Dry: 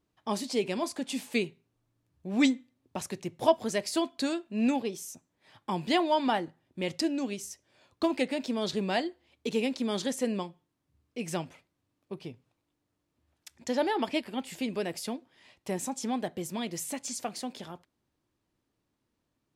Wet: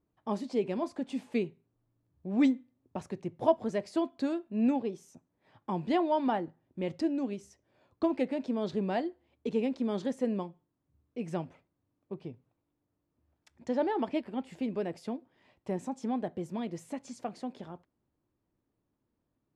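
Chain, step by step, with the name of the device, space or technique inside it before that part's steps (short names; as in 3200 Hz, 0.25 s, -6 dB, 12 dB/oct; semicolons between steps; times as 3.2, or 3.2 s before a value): through cloth (LPF 9500 Hz 12 dB/oct; high shelf 2100 Hz -17.5 dB)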